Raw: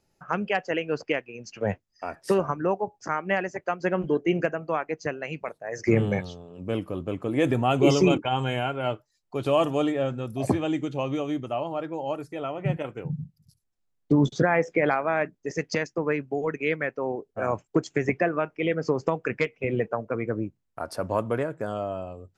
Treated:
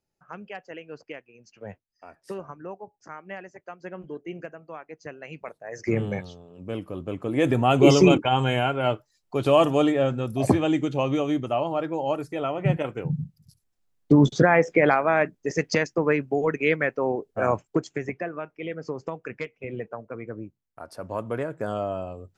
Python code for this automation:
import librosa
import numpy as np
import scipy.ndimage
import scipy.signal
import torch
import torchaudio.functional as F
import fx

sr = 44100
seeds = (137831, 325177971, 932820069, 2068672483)

y = fx.gain(x, sr, db=fx.line((4.83, -12.5), (5.51, -3.5), (6.78, -3.5), (7.83, 4.0), (17.49, 4.0), (18.14, -7.5), (20.95, -7.5), (21.7, 2.0)))